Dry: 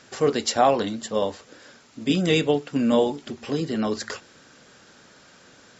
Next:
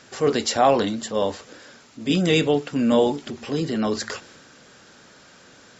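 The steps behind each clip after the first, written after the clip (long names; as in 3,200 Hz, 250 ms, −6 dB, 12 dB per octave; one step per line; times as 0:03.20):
transient designer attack −3 dB, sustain +3 dB
level +2 dB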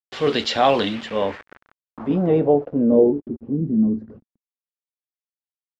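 bit reduction 6 bits
low-pass filter sweep 3,400 Hz → 230 Hz, 0:00.79–0:03.62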